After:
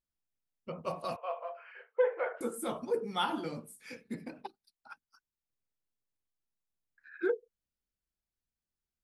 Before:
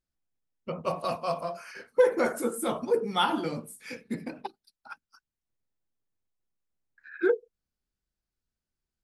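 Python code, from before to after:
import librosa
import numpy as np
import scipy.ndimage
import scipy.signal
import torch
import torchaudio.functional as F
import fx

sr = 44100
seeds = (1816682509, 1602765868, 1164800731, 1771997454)

y = fx.cheby1_bandpass(x, sr, low_hz=450.0, high_hz=3100.0, order=4, at=(1.16, 2.41))
y = F.gain(torch.from_numpy(y), -6.5).numpy()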